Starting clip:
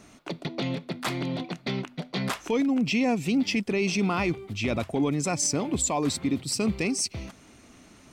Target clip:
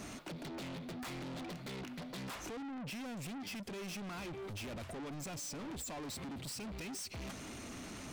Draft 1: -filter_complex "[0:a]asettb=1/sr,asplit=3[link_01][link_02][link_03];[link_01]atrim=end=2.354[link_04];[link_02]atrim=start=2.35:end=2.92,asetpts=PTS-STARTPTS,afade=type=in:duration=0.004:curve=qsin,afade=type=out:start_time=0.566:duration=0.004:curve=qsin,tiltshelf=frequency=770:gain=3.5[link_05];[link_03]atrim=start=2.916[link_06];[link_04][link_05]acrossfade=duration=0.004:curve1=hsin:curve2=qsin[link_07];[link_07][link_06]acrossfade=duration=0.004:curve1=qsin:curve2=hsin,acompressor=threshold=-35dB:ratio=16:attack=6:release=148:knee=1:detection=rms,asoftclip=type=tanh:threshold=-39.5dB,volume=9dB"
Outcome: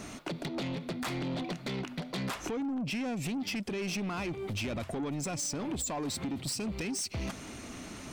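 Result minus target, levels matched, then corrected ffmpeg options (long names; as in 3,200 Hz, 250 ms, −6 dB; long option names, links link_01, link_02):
soft clipping: distortion −7 dB
-filter_complex "[0:a]asettb=1/sr,asplit=3[link_01][link_02][link_03];[link_01]atrim=end=2.354[link_04];[link_02]atrim=start=2.35:end=2.92,asetpts=PTS-STARTPTS,afade=type=in:duration=0.004:curve=qsin,afade=type=out:start_time=0.566:duration=0.004:curve=qsin,tiltshelf=frequency=770:gain=3.5[link_05];[link_03]atrim=start=2.916[link_06];[link_04][link_05]acrossfade=duration=0.004:curve1=hsin:curve2=qsin[link_07];[link_07][link_06]acrossfade=duration=0.004:curve1=qsin:curve2=hsin,acompressor=threshold=-35dB:ratio=16:attack=6:release=148:knee=1:detection=rms,asoftclip=type=tanh:threshold=-51.5dB,volume=9dB"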